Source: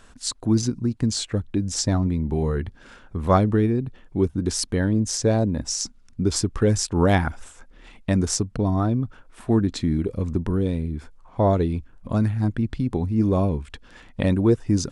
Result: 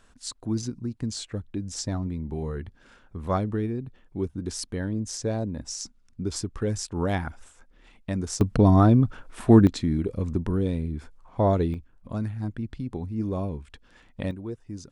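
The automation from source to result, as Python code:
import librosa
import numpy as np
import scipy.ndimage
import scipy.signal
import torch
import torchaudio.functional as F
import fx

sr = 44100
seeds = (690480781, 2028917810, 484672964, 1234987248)

y = fx.gain(x, sr, db=fx.steps((0.0, -8.0), (8.41, 5.0), (9.67, -2.5), (11.74, -8.5), (14.31, -17.0)))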